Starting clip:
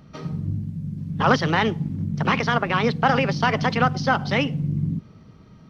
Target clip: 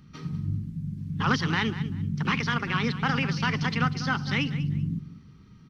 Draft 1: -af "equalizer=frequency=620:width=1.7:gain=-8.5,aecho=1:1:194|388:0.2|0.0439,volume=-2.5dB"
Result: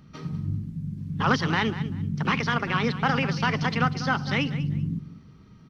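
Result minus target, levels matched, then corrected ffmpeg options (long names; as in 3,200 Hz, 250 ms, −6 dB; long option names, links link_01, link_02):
500 Hz band +4.0 dB
-af "equalizer=frequency=620:width=1.7:gain=-19,aecho=1:1:194|388:0.2|0.0439,volume=-2.5dB"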